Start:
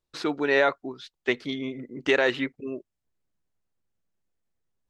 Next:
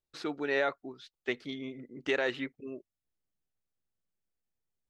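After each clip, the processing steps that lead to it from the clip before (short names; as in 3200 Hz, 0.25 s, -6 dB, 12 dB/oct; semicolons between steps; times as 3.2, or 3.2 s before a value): notch 1000 Hz, Q 13; gain -8 dB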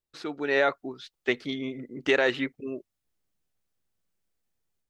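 AGC gain up to 7 dB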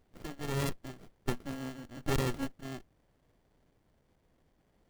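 FFT order left unsorted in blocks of 32 samples; added noise pink -63 dBFS; running maximum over 33 samples; gain -4.5 dB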